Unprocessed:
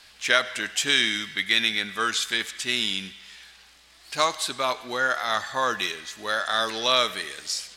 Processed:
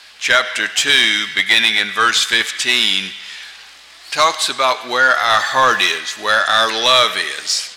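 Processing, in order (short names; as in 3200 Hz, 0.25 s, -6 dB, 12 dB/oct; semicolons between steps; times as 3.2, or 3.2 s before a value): 5.3–5.98 G.711 law mismatch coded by mu; AGC gain up to 4 dB; overdrive pedal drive 14 dB, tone 5500 Hz, clips at -2.5 dBFS; gain +2 dB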